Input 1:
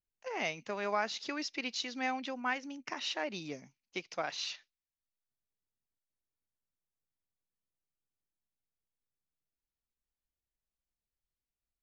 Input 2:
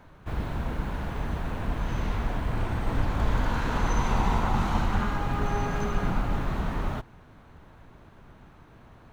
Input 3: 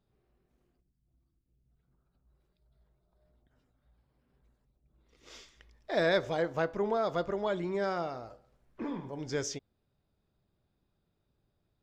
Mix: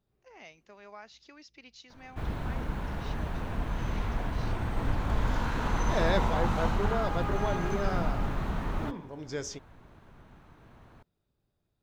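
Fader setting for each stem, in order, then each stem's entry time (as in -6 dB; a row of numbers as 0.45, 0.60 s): -15.0, -3.0, -2.0 dB; 0.00, 1.90, 0.00 s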